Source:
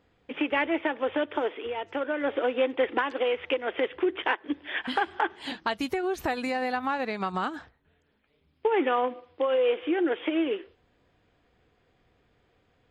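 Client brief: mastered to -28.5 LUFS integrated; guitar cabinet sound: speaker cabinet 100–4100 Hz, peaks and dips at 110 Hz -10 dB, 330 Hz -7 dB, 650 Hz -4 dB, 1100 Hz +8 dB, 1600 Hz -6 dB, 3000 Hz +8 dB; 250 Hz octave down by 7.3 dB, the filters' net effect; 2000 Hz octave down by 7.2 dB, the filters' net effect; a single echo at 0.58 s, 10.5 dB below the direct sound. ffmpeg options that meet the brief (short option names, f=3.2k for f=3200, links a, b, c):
-af "highpass=100,equalizer=f=110:t=q:w=4:g=-10,equalizer=f=330:t=q:w=4:g=-7,equalizer=f=650:t=q:w=4:g=-4,equalizer=f=1.1k:t=q:w=4:g=8,equalizer=f=1.6k:t=q:w=4:g=-6,equalizer=f=3k:t=q:w=4:g=8,lowpass=f=4.1k:w=0.5412,lowpass=f=4.1k:w=1.3066,equalizer=f=250:t=o:g=-4,equalizer=f=2k:t=o:g=-8,aecho=1:1:580:0.299,volume=2.5dB"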